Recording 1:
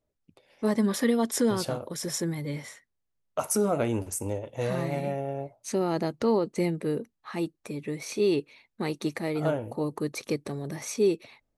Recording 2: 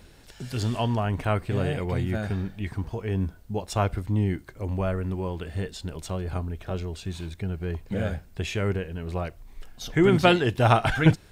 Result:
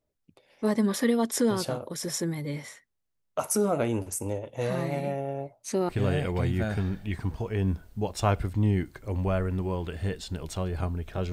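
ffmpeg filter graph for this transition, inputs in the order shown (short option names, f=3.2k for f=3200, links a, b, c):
-filter_complex "[0:a]apad=whole_dur=11.32,atrim=end=11.32,atrim=end=5.892[a];[1:a]atrim=start=1.418:end=6.85[b];[a][b]acrossfade=d=0.004:c1=hsin:c2=hsin"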